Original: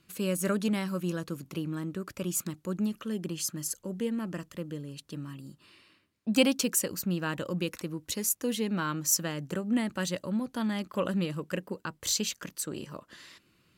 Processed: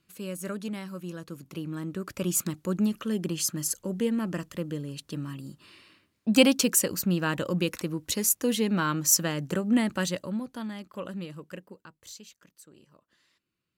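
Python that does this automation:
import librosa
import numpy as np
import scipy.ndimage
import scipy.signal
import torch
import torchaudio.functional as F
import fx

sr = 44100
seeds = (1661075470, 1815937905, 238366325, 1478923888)

y = fx.gain(x, sr, db=fx.line((1.11, -6.0), (2.28, 4.5), (9.94, 4.5), (10.79, -7.0), (11.48, -7.0), (12.24, -18.0)))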